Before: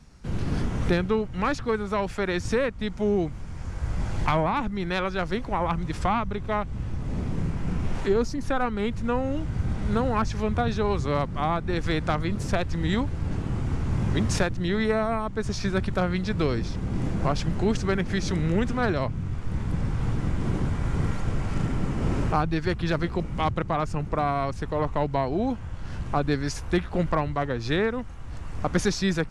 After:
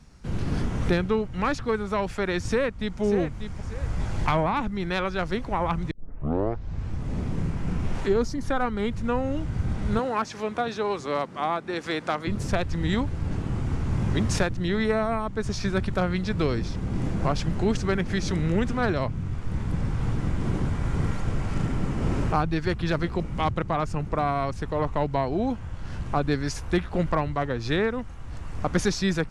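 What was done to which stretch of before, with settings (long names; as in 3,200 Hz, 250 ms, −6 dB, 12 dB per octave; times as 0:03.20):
0:02.44–0:03.01: delay throw 590 ms, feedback 35%, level −9 dB
0:05.91: tape start 1.06 s
0:08.19–0:08.90: notch filter 2,600 Hz
0:09.99–0:12.27: high-pass filter 290 Hz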